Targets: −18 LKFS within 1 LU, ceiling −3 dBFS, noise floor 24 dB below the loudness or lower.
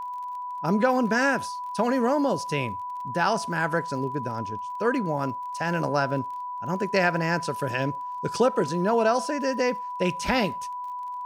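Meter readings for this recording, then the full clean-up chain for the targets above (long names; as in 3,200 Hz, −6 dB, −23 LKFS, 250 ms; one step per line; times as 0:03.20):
crackle rate 29 per second; interfering tone 990 Hz; level of the tone −31 dBFS; integrated loudness −26.0 LKFS; sample peak −9.0 dBFS; target loudness −18.0 LKFS
→ click removal
notch filter 990 Hz, Q 30
level +8 dB
brickwall limiter −3 dBFS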